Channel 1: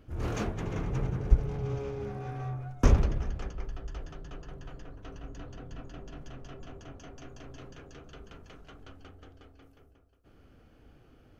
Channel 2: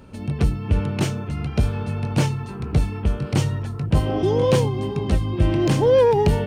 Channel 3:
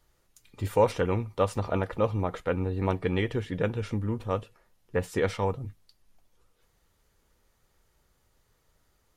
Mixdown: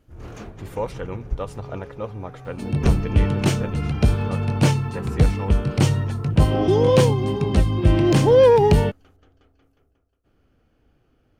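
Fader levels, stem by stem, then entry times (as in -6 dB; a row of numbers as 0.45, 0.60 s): -5.0, +2.5, -5.0 dB; 0.00, 2.45, 0.00 s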